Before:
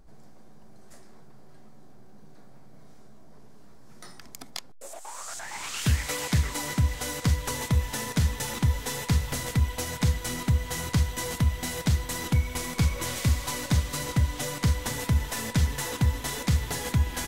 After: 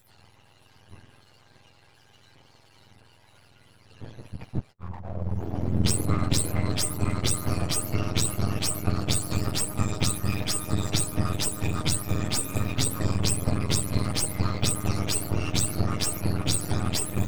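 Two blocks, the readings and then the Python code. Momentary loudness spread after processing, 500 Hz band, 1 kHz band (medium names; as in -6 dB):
7 LU, +3.0 dB, 0.0 dB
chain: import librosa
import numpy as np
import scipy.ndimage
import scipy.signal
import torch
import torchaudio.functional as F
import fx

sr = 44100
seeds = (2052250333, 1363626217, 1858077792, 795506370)

y = fx.octave_mirror(x, sr, pivot_hz=780.0)
y = np.maximum(y, 0.0)
y = F.gain(torch.from_numpy(y), 6.0).numpy()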